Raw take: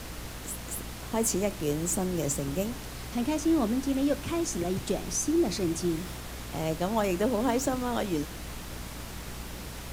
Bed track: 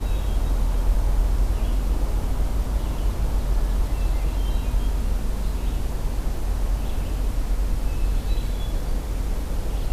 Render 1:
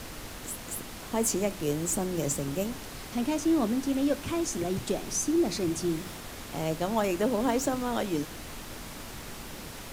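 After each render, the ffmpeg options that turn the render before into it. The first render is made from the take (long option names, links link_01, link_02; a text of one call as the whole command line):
ffmpeg -i in.wav -af "bandreject=frequency=60:width_type=h:width=6,bandreject=frequency=120:width_type=h:width=6,bandreject=frequency=180:width_type=h:width=6" out.wav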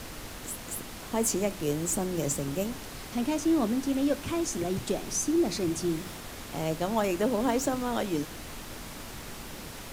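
ffmpeg -i in.wav -af anull out.wav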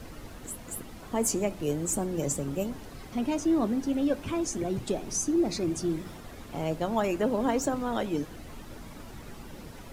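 ffmpeg -i in.wav -af "afftdn=noise_reduction=10:noise_floor=-42" out.wav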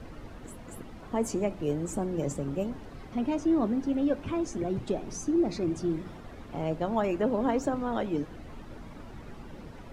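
ffmpeg -i in.wav -af "aemphasis=mode=reproduction:type=75kf" out.wav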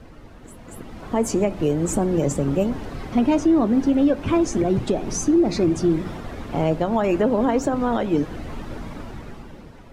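ffmpeg -i in.wav -af "dynaudnorm=framelen=150:gausssize=13:maxgain=12.5dB,alimiter=limit=-10.5dB:level=0:latency=1:release=203" out.wav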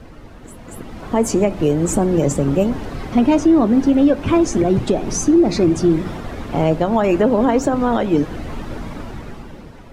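ffmpeg -i in.wav -af "volume=4.5dB" out.wav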